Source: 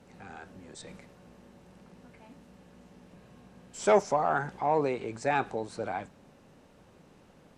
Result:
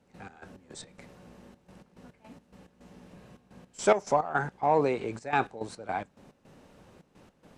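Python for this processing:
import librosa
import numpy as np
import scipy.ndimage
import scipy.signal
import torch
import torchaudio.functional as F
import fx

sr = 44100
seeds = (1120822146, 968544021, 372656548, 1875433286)

y = fx.step_gate(x, sr, bpm=107, pattern='.x.x.x.xxxx.x', floor_db=-12.0, edge_ms=4.5)
y = y * librosa.db_to_amplitude(2.5)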